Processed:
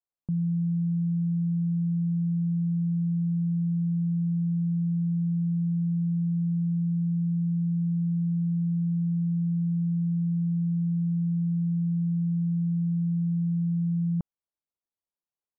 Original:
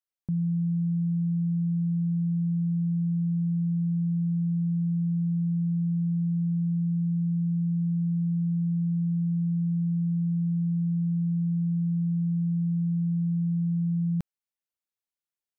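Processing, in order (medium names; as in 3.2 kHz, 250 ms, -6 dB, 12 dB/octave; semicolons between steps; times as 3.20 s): steep low-pass 1.2 kHz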